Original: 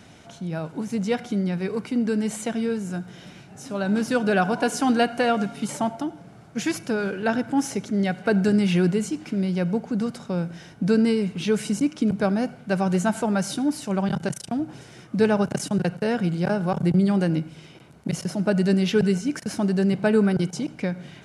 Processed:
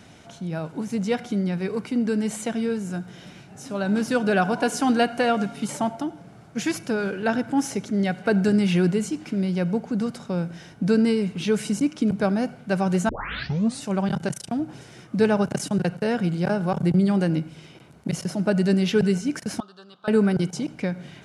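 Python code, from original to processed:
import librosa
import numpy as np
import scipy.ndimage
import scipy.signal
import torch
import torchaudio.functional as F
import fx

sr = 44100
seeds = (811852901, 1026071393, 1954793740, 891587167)

y = fx.double_bandpass(x, sr, hz=2100.0, octaves=1.5, at=(19.6, 20.08))
y = fx.edit(y, sr, fx.tape_start(start_s=13.09, length_s=0.75), tone=tone)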